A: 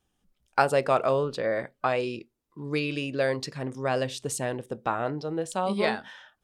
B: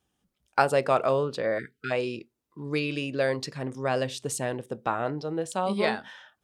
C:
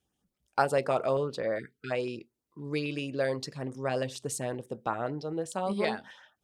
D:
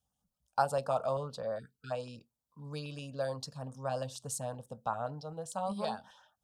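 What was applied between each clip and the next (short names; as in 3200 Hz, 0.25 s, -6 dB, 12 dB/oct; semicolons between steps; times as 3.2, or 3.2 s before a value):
HPF 60 Hz; spectral delete 1.58–1.91, 470–1300 Hz
LFO notch saw up 7.7 Hz 840–4400 Hz; gain -3 dB
fixed phaser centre 860 Hz, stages 4; gain -1.5 dB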